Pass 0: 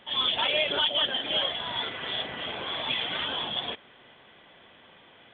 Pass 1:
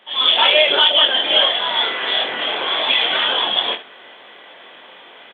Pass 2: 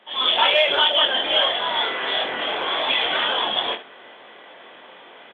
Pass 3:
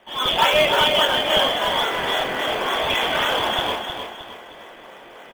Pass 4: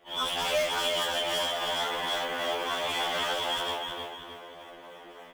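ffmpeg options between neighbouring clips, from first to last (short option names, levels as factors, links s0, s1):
-filter_complex "[0:a]highpass=380,dynaudnorm=f=140:g=3:m=2.82,asplit=2[s0][s1];[s1]aecho=0:1:23|74:0.531|0.211[s2];[s0][s2]amix=inputs=2:normalize=0,volume=1.41"
-filter_complex "[0:a]highshelf=f=2500:g=-8.5,acrossover=split=560[s0][s1];[s0]asoftclip=type=hard:threshold=0.0237[s2];[s2][s1]amix=inputs=2:normalize=0"
-filter_complex "[0:a]lowpass=3400,asplit=2[s0][s1];[s1]acrusher=samples=17:mix=1:aa=0.000001:lfo=1:lforange=17:lforate=3.6,volume=0.376[s2];[s0][s2]amix=inputs=2:normalize=0,aecho=1:1:310|620|930|1240:0.447|0.17|0.0645|0.0245"
-filter_complex "[0:a]acrossover=split=520[s0][s1];[s0]acompressor=threshold=0.0126:ratio=6[s2];[s1]asoftclip=type=hard:threshold=0.0891[s3];[s2][s3]amix=inputs=2:normalize=0,afftfilt=real='re*2*eq(mod(b,4),0)':imag='im*2*eq(mod(b,4),0)':win_size=2048:overlap=0.75,volume=0.668"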